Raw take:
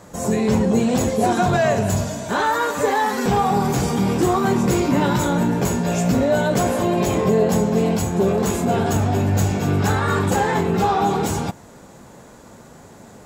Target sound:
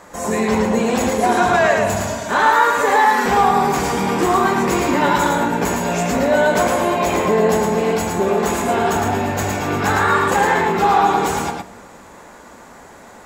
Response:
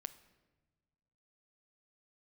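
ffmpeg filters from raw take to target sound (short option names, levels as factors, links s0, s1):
-filter_complex "[0:a]equalizer=f=125:t=o:w=1:g=-12,equalizer=f=1000:t=o:w=1:g=5,equalizer=f=2000:t=o:w=1:g=6,asplit=2[s0][s1];[1:a]atrim=start_sample=2205,adelay=110[s2];[s1][s2]afir=irnorm=-1:irlink=0,volume=1.06[s3];[s0][s3]amix=inputs=2:normalize=0"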